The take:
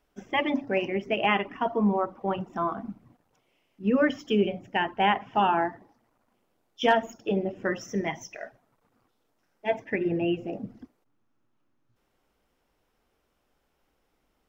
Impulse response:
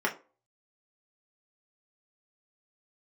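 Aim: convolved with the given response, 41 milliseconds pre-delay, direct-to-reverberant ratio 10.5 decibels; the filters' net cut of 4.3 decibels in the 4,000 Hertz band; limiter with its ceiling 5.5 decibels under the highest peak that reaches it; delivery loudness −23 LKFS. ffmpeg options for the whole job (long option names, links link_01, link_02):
-filter_complex "[0:a]equalizer=frequency=4000:width_type=o:gain=-7,alimiter=limit=-16.5dB:level=0:latency=1,asplit=2[link_01][link_02];[1:a]atrim=start_sample=2205,adelay=41[link_03];[link_02][link_03]afir=irnorm=-1:irlink=0,volume=-21dB[link_04];[link_01][link_04]amix=inputs=2:normalize=0,volume=5.5dB"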